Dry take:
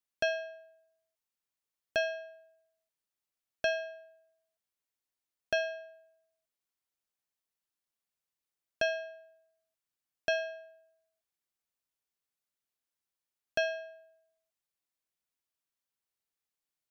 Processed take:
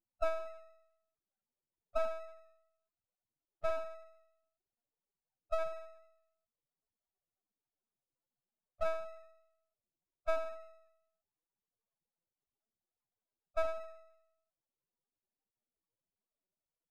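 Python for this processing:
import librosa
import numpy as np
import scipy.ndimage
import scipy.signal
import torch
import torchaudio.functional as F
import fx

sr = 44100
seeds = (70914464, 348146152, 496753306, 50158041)

y = fx.low_shelf(x, sr, hz=160.0, db=2.5)
y = fx.sample_hold(y, sr, seeds[0], rate_hz=2600.0, jitter_pct=20)
y = fx.spec_topn(y, sr, count=4)
y = np.maximum(y, 0.0)
y = F.gain(torch.from_numpy(y), 3.5).numpy()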